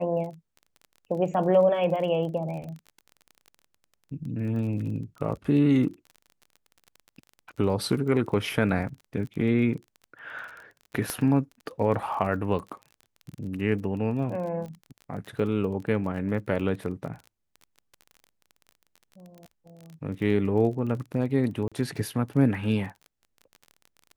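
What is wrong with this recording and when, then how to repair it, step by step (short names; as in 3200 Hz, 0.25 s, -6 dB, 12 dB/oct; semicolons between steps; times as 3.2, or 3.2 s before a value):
crackle 27/s -36 dBFS
11.1 pop -14 dBFS
21.68–21.72 gap 36 ms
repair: de-click; interpolate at 21.68, 36 ms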